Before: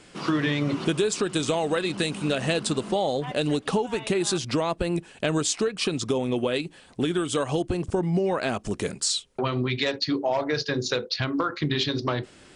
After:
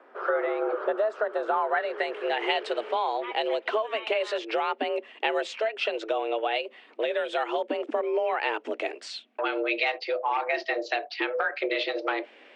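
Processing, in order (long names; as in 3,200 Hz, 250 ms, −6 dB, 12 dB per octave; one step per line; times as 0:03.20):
low-pass filter sweep 1,100 Hz → 2,300 Hz, 0:01.42–0:02.52
frequency shifter +220 Hz
level −3 dB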